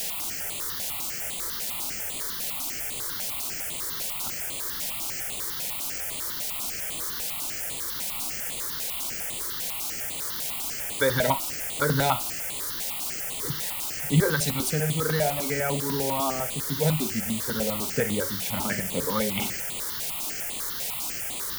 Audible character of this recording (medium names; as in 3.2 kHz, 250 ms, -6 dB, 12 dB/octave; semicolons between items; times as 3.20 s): a quantiser's noise floor 6-bit, dither triangular; notches that jump at a steady rate 10 Hz 320–5500 Hz